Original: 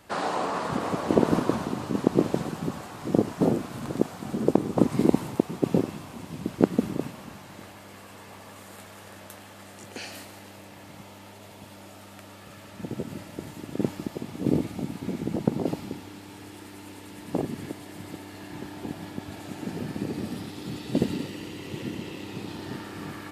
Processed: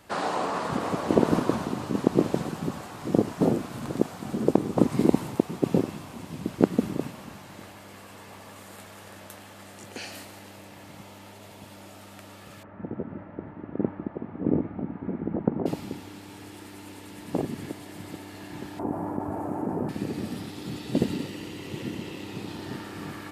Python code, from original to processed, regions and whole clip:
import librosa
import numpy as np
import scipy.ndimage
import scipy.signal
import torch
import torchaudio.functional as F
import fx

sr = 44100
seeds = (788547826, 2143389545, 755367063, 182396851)

y = fx.chain(x, sr, fx.lowpass(hz=1700.0, slope=24),
    fx.peak_eq(hz=130.0, db=-7.5, octaves=0.25), at=(12.63, 15.66))
y = fx.chain(y, sr, fx.curve_eq(hz=(190.0, 280.0, 1000.0, 1800.0, 3600.0, 10000.0), db=(0, 4, 8, -9, -28, -11)),
    fx.env_flatten(amount_pct=50), at=(18.79, 19.89))